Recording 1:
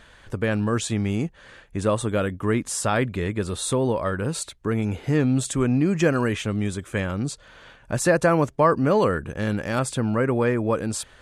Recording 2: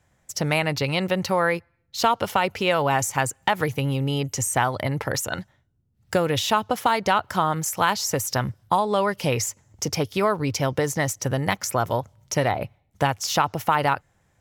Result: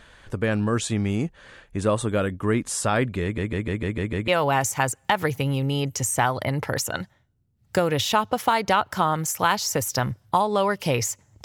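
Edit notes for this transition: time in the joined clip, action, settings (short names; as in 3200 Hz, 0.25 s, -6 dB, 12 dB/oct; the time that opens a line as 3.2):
recording 1
3.23 stutter in place 0.15 s, 7 plays
4.28 switch to recording 2 from 2.66 s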